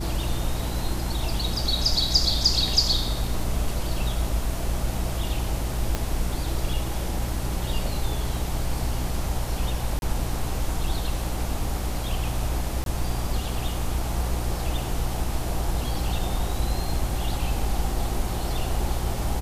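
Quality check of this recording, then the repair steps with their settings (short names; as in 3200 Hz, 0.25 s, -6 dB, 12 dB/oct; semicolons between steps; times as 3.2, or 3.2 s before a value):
hum 60 Hz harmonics 5 -30 dBFS
5.95 pop -10 dBFS
9.99–10.02 gap 31 ms
12.84–12.86 gap 22 ms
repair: de-click; de-hum 60 Hz, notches 5; interpolate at 9.99, 31 ms; interpolate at 12.84, 22 ms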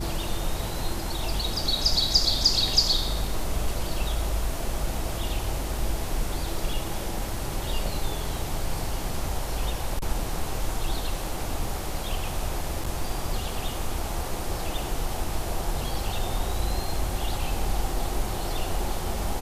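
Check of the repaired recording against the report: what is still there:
5.95 pop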